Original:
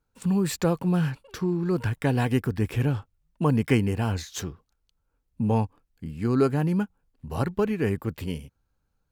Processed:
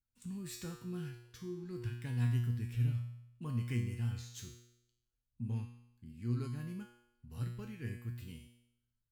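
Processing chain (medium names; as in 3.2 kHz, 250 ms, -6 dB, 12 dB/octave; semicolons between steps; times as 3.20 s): amplifier tone stack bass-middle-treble 6-0-2; feedback comb 120 Hz, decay 0.79 s, harmonics all, mix 90%; trim +15 dB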